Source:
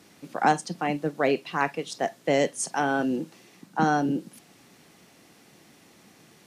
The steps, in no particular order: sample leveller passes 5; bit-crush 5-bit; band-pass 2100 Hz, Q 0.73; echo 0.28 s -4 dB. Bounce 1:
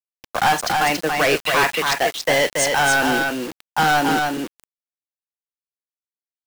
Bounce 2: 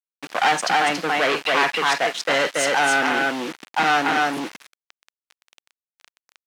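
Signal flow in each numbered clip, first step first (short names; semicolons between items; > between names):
band-pass > sample leveller > bit-crush > echo; echo > sample leveller > bit-crush > band-pass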